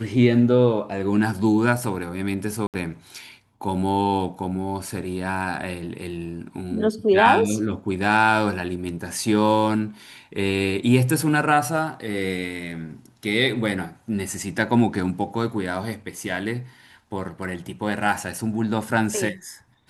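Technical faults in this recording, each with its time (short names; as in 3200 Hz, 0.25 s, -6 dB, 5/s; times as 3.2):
2.67–2.74 gap 68 ms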